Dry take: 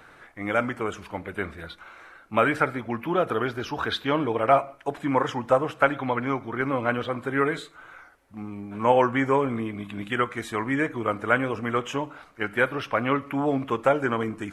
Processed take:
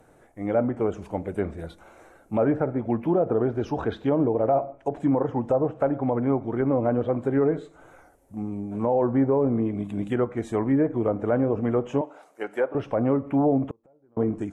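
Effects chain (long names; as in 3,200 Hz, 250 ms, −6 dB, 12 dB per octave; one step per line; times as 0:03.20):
0:12.01–0:12.75: high-pass filter 490 Hz 12 dB per octave
treble cut that deepens with the level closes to 1,400 Hz, closed at −21.5 dBFS
flat-topped bell 2,300 Hz −15 dB 2.6 octaves
automatic gain control gain up to 5.5 dB
brickwall limiter −13.5 dBFS, peak gain reduction 9.5 dB
0:13.63–0:14.17: gate with flip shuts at −22 dBFS, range −38 dB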